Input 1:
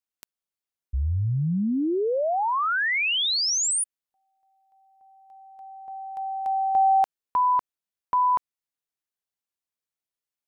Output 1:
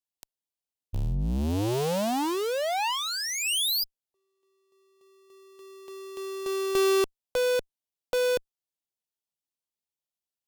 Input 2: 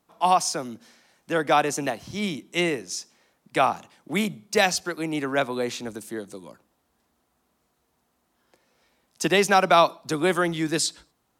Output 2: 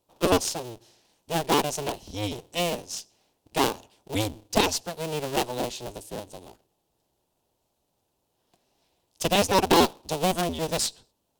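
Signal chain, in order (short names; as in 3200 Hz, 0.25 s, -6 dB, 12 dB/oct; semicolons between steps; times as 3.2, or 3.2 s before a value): cycle switcher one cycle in 2, inverted; band shelf 1600 Hz -10.5 dB 1.2 oct; added harmonics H 6 -21 dB, 7 -28 dB, 8 -35 dB, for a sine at -5.5 dBFS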